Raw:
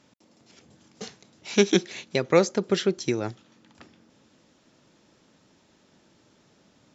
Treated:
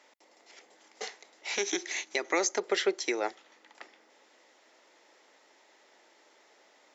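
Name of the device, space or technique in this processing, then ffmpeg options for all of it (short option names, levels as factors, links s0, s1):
laptop speaker: -filter_complex "[0:a]asettb=1/sr,asplit=3[s0][s1][s2];[s0]atrim=end=1.584[s3];[s1]atrim=start=1.58:end=2.6,asetpts=PTS-STARTPTS,afade=t=in:d=0.004:c=qsin,afade=t=out:st=1.016:d=0.004:c=qsin,equalizer=f=315:t=o:w=0.33:g=7,equalizer=f=500:t=o:w=0.33:g=-8,equalizer=f=6300:t=o:w=0.33:g=10[s4];[s2]atrim=start=2.596[s5];[s3][s4]acrossfade=d=0.004:c1=hsin:c2=qsin[s6];[s6][s5]acrossfade=d=0.004:c1=qsin:c2=hsin,highpass=f=390:w=0.5412,highpass=f=390:w=1.3066,equalizer=f=810:t=o:w=0.57:g=5,equalizer=f=2000:t=o:w=0.3:g=10,alimiter=limit=0.141:level=0:latency=1:release=122"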